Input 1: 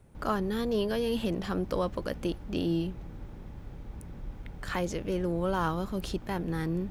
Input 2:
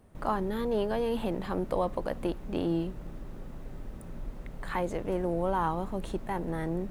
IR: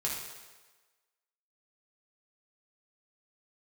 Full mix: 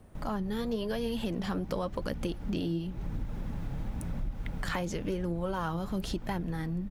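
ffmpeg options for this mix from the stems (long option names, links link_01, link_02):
-filter_complex "[0:a]flanger=delay=0.1:depth=7.2:regen=62:speed=0.94:shape=triangular,dynaudnorm=framelen=170:gausssize=7:maxgain=13dB,volume=-0.5dB[link_01];[1:a]acrossover=split=230[link_02][link_03];[link_03]acompressor=threshold=-49dB:ratio=2.5[link_04];[link_02][link_04]amix=inputs=2:normalize=0,volume=-1,adelay=0.9,volume=2dB[link_05];[link_01][link_05]amix=inputs=2:normalize=0,acompressor=threshold=-30dB:ratio=6"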